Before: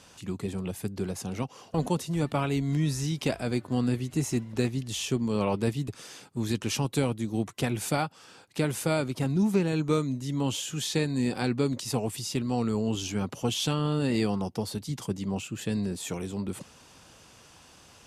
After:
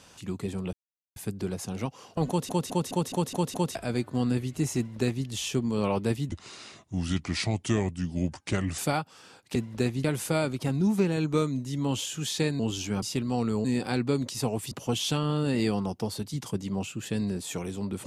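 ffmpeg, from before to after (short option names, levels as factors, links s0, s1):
-filter_complex "[0:a]asplit=17[s0][s1][s2][s3][s4][s5][s6][s7][s8][s9][s10][s11][s12][s13][s14][s15][s16];[s0]atrim=end=0.73,asetpts=PTS-STARTPTS,afade=t=out:st=0.726:d=0.004:c=hsin,apad=pad_dur=0.43[s17];[s1]atrim=start=0.73:end=2.062,asetpts=PTS-STARTPTS,afade=t=in:d=0.004:c=hsin[s18];[s2]atrim=start=1.848:end=2.062[s19];[s3]atrim=start=1.848:end=2.062[s20];[s4]atrim=start=1.848:end=2.062[s21];[s5]atrim=start=1.848:end=2.062[s22];[s6]atrim=start=1.848:end=2.062[s23];[s7]atrim=start=1.848:end=2.062[s24];[s8]atrim=start=3.318:end=5.864[s25];[s9]atrim=start=5.86:end=7.83,asetpts=PTS-STARTPTS,asetrate=34839,aresample=44100[s26];[s10]atrim=start=7.826:end=8.602[s27];[s11]atrim=start=4.338:end=4.832[s28];[s12]atrim=start=8.598:end=11.152[s29];[s13]atrim=start=12.838:end=13.272[s30];[s14]atrim=start=12.218:end=12.842[s31];[s15]atrim=start=11.148:end=12.222[s32];[s16]atrim=start=13.268[s33];[s17][s18]concat=n=2:v=0:a=1[s34];[s34][s19]acrossfade=d=0.004:c1=hsin:c2=hsin[s35];[s35][s20]acrossfade=d=0.004:c1=hsin:c2=hsin[s36];[s36][s21]acrossfade=d=0.004:c1=hsin:c2=hsin[s37];[s37][s22]acrossfade=d=0.004:c1=hsin:c2=hsin[s38];[s38][s23]acrossfade=d=0.004:c1=hsin:c2=hsin[s39];[s39][s24]acrossfade=d=0.004:c1=hsin:c2=hsin[s40];[s40][s25]acrossfade=d=0.004:c1=hsin:c2=hsin[s41];[s41][s26]acrossfade=d=0.004:c1=hsin:c2=hsin[s42];[s42][s27]acrossfade=d=0.004:c1=hsin:c2=hsin[s43];[s43][s28]acrossfade=d=0.004:c1=hsin:c2=hsin[s44];[s44][s29]acrossfade=d=0.004:c1=hsin:c2=hsin[s45];[s45][s30]acrossfade=d=0.004:c1=hsin:c2=hsin[s46];[s46][s31]acrossfade=d=0.004:c1=hsin:c2=hsin[s47];[s47][s32]acrossfade=d=0.004:c1=hsin:c2=hsin[s48];[s48][s33]acrossfade=d=0.004:c1=hsin:c2=hsin"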